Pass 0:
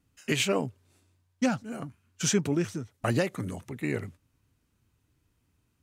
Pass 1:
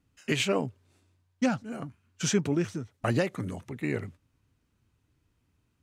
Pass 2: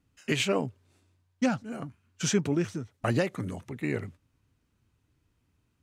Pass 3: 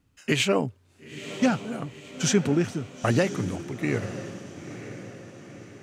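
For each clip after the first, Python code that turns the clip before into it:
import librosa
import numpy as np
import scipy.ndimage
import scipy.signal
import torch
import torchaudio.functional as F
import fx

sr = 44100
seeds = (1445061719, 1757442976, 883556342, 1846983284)

y1 = fx.high_shelf(x, sr, hz=8600.0, db=-9.5)
y2 = y1
y3 = fx.echo_diffused(y2, sr, ms=955, feedback_pct=50, wet_db=-12)
y3 = F.gain(torch.from_numpy(y3), 4.0).numpy()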